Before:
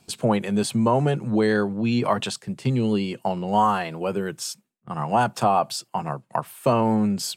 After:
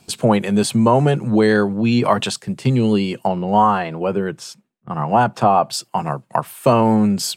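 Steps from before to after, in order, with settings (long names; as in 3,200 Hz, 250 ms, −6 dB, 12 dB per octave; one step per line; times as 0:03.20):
0:03.27–0:05.73: low-pass filter 2,100 Hz 6 dB per octave
level +6 dB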